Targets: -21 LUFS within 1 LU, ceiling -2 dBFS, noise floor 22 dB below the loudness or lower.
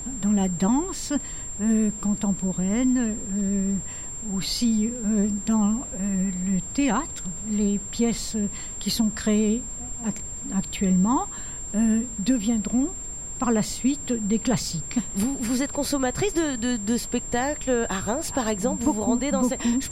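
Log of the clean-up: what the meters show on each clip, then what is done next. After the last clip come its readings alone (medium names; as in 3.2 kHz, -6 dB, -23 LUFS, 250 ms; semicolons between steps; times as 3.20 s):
steady tone 7.4 kHz; tone level -33 dBFS; noise floor -35 dBFS; noise floor target -47 dBFS; loudness -25.0 LUFS; peak level -10.5 dBFS; loudness target -21.0 LUFS
-> band-stop 7.4 kHz, Q 30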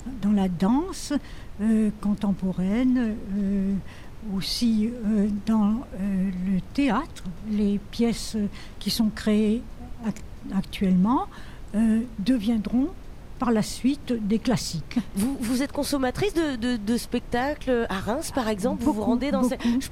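steady tone not found; noise floor -41 dBFS; noise floor target -48 dBFS
-> noise print and reduce 7 dB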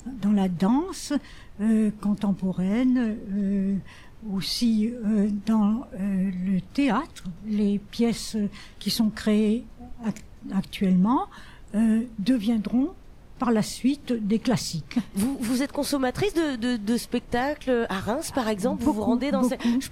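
noise floor -46 dBFS; noise floor target -48 dBFS
-> noise print and reduce 6 dB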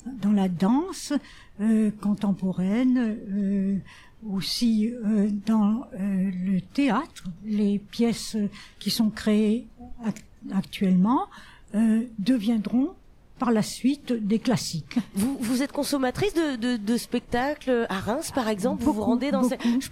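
noise floor -50 dBFS; loudness -25.5 LUFS; peak level -11.0 dBFS; loudness target -21.0 LUFS
-> trim +4.5 dB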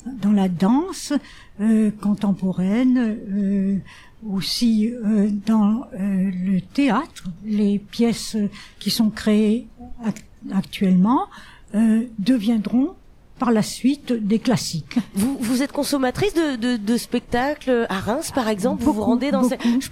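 loudness -21.0 LUFS; peak level -6.5 dBFS; noise floor -46 dBFS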